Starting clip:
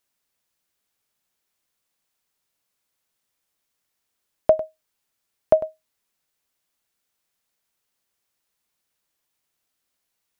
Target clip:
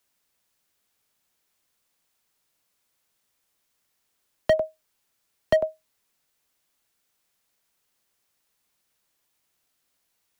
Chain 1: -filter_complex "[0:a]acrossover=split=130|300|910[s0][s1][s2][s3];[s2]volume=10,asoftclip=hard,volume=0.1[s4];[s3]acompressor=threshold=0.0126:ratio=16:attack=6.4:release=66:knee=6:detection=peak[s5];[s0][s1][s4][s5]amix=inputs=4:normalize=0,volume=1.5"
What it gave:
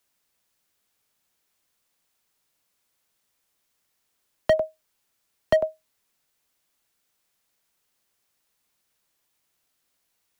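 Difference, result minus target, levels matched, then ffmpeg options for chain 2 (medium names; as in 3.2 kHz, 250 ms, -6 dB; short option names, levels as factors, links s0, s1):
compression: peak gain reduction -7 dB
-filter_complex "[0:a]acrossover=split=130|300|910[s0][s1][s2][s3];[s2]volume=10,asoftclip=hard,volume=0.1[s4];[s3]acompressor=threshold=0.00531:ratio=16:attack=6.4:release=66:knee=6:detection=peak[s5];[s0][s1][s4][s5]amix=inputs=4:normalize=0,volume=1.5"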